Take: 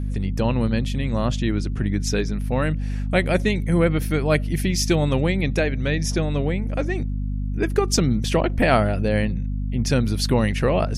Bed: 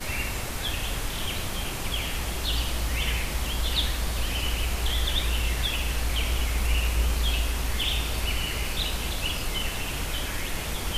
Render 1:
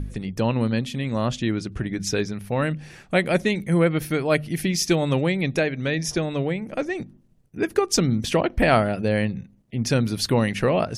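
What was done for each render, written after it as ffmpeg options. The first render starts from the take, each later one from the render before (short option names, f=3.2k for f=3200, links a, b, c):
-af "bandreject=f=50:t=h:w=4,bandreject=f=100:t=h:w=4,bandreject=f=150:t=h:w=4,bandreject=f=200:t=h:w=4,bandreject=f=250:t=h:w=4"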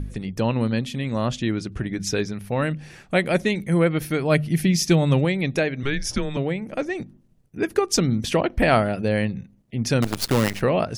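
-filter_complex "[0:a]asettb=1/sr,asplit=3[a][b][c];[a]atrim=end=4.224[d];[b]atrim=start=4.22:end=5.25,asetpts=PTS-STARTPTS,afade=t=in:d=0.004:c=qsin,afade=t=out:st=1.026:d=0.004:c=qsin,equalizer=f=160:t=o:w=0.77:g=7[e];[c]atrim=start=5.246[f];[d][e]acrossfade=d=0.004:c1=hsin:c2=qsin[g];[g][f]acrossfade=d=0.004:c1=qsin:c2=hsin,asettb=1/sr,asplit=3[h][i][j];[h]atrim=end=5.834[k];[i]atrim=start=5.83:end=6.37,asetpts=PTS-STARTPTS,afade=t=in:d=0.004:c=qsin,afade=t=out:st=0.536:d=0.004:c=qsin,afreqshift=-140[l];[j]atrim=start=6.366[m];[k][l]acrossfade=d=0.004:c1=hsin:c2=qsin[n];[n][m]acrossfade=d=0.004:c1=qsin:c2=hsin,asettb=1/sr,asplit=3[o][p][q];[o]atrim=end=10.024[r];[p]atrim=start=10.02:end=10.61,asetpts=PTS-STARTPTS,afade=t=in:d=0.004:c=qsin,afade=t=out:st=0.586:d=0.004:c=qsin,acrusher=bits=4:dc=4:mix=0:aa=0.000001[s];[q]atrim=start=10.606[t];[r][s]acrossfade=d=0.004:c1=hsin:c2=qsin[u];[u][t]acrossfade=d=0.004:c1=qsin:c2=hsin"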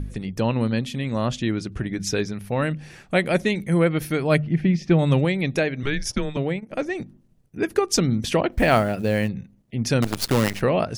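-filter_complex "[0:a]asettb=1/sr,asplit=3[a][b][c];[a]atrim=end=4.384[d];[b]atrim=start=4.38:end=4.99,asetpts=PTS-STARTPTS,afade=t=in:d=0.004:c=qsin,afade=t=out:st=0.606:d=0.004:c=qsin,lowpass=2k[e];[c]atrim=start=4.986[f];[d][e]acrossfade=d=0.004:c1=hsin:c2=qsin[g];[g][f]acrossfade=d=0.004:c1=qsin:c2=hsin,asettb=1/sr,asplit=3[h][i][j];[h]atrim=end=5.864[k];[i]atrim=start=5.86:end=6.71,asetpts=PTS-STARTPTS,afade=t=in:d=0.004:c=qsin,afade=t=out:st=0.846:d=0.004:c=qsin,agate=range=-14dB:threshold=-30dB:ratio=16:release=100:detection=peak[l];[j]atrim=start=6.706[m];[k][l]acrossfade=d=0.004:c1=hsin:c2=qsin[n];[n][m]acrossfade=d=0.004:c1=qsin:c2=hsin,asplit=3[o][p][q];[o]afade=t=out:st=8.51:d=0.02[r];[p]acrusher=bits=7:mode=log:mix=0:aa=0.000001,afade=t=in:st=8.51:d=0.02,afade=t=out:st=9.27:d=0.02[s];[q]afade=t=in:st=9.27:d=0.02[t];[r][s][t]amix=inputs=3:normalize=0"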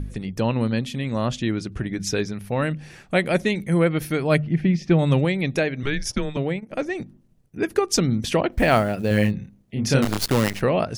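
-filter_complex "[0:a]asettb=1/sr,asplit=3[a][b][c];[a]atrim=end=9.084[d];[b]atrim=start=9.08:end=10.26,asetpts=PTS-STARTPTS,afade=t=in:d=0.004:c=qsin,afade=t=out:st=1.176:d=0.004:c=qsin,asplit=2[e][f];[f]adelay=29,volume=-2.5dB[g];[e][g]amix=inputs=2:normalize=0,atrim=end_sample=52038[h];[c]atrim=start=10.256[i];[d][h]acrossfade=d=0.004:c1=hsin:c2=qsin[j];[j][i]acrossfade=d=0.004:c1=qsin:c2=hsin"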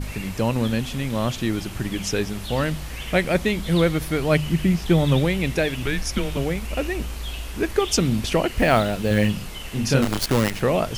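-filter_complex "[1:a]volume=-6dB[a];[0:a][a]amix=inputs=2:normalize=0"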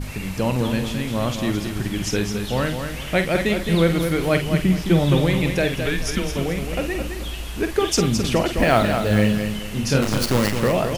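-filter_complex "[0:a]asplit=2[a][b];[b]adelay=48,volume=-9dB[c];[a][c]amix=inputs=2:normalize=0,asplit=2[d][e];[e]aecho=0:1:214|428|642|856:0.447|0.13|0.0376|0.0109[f];[d][f]amix=inputs=2:normalize=0"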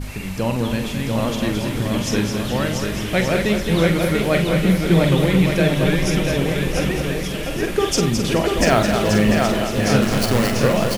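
-filter_complex "[0:a]asplit=2[a][b];[b]adelay=43,volume=-11.5dB[c];[a][c]amix=inputs=2:normalize=0,aecho=1:1:690|1173|1511|1748|1913:0.631|0.398|0.251|0.158|0.1"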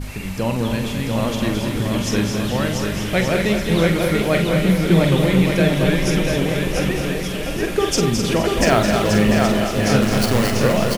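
-af "aecho=1:1:252:0.299"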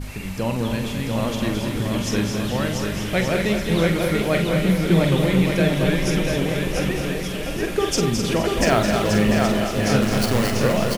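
-af "volume=-2.5dB"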